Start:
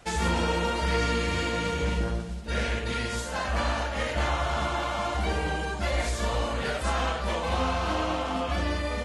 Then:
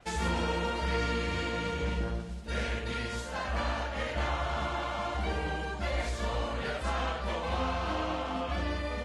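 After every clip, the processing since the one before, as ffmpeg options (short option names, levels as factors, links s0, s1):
-af "adynamicequalizer=threshold=0.00282:dfrequency=5800:dqfactor=0.7:tfrequency=5800:tqfactor=0.7:attack=5:release=100:ratio=0.375:range=3.5:mode=cutabove:tftype=highshelf,volume=0.596"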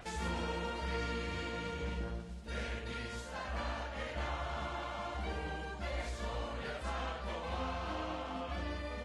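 -af "acompressor=mode=upward:threshold=0.0178:ratio=2.5,volume=0.447"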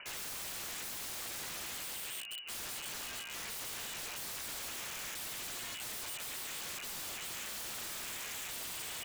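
-af "lowpass=f=2600:t=q:w=0.5098,lowpass=f=2600:t=q:w=0.6013,lowpass=f=2600:t=q:w=0.9,lowpass=f=2600:t=q:w=2.563,afreqshift=-3000,aeval=exprs='(mod(89.1*val(0)+1,2)-1)/89.1':c=same,volume=1.19"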